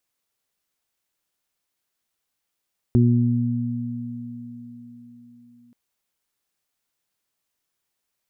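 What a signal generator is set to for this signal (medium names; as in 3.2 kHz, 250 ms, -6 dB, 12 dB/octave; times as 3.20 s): additive tone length 2.78 s, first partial 120 Hz, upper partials -2/-8.5 dB, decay 3.33 s, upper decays 4.76/0.86 s, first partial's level -14 dB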